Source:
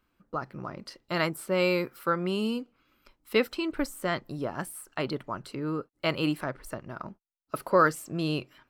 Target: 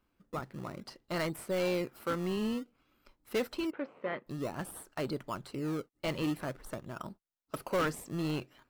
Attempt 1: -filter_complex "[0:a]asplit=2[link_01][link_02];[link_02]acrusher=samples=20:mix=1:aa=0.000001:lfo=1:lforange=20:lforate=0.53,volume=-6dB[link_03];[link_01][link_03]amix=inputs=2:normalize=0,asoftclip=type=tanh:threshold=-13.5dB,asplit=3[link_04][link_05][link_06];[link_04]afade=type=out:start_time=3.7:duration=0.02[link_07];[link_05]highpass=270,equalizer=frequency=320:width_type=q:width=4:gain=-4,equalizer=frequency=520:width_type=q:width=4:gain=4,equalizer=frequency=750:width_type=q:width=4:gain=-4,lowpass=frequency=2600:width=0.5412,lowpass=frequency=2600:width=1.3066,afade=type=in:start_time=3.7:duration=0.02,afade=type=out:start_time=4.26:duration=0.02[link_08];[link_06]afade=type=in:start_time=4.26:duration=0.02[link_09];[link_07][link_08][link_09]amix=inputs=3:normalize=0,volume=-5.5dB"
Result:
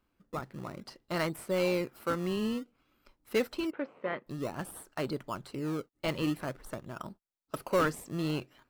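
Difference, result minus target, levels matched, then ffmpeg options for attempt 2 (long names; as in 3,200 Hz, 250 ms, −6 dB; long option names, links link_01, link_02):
soft clipping: distortion −7 dB
-filter_complex "[0:a]asplit=2[link_01][link_02];[link_02]acrusher=samples=20:mix=1:aa=0.000001:lfo=1:lforange=20:lforate=0.53,volume=-6dB[link_03];[link_01][link_03]amix=inputs=2:normalize=0,asoftclip=type=tanh:threshold=-20dB,asplit=3[link_04][link_05][link_06];[link_04]afade=type=out:start_time=3.7:duration=0.02[link_07];[link_05]highpass=270,equalizer=frequency=320:width_type=q:width=4:gain=-4,equalizer=frequency=520:width_type=q:width=4:gain=4,equalizer=frequency=750:width_type=q:width=4:gain=-4,lowpass=frequency=2600:width=0.5412,lowpass=frequency=2600:width=1.3066,afade=type=in:start_time=3.7:duration=0.02,afade=type=out:start_time=4.26:duration=0.02[link_08];[link_06]afade=type=in:start_time=4.26:duration=0.02[link_09];[link_07][link_08][link_09]amix=inputs=3:normalize=0,volume=-5.5dB"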